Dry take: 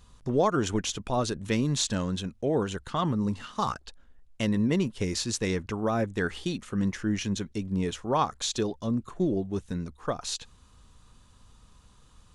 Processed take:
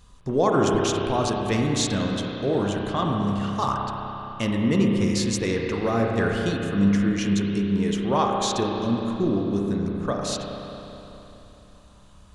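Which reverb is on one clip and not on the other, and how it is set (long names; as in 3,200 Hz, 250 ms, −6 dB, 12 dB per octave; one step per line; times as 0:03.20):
spring reverb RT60 3.4 s, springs 30/35 ms, chirp 75 ms, DRR −0.5 dB
level +2 dB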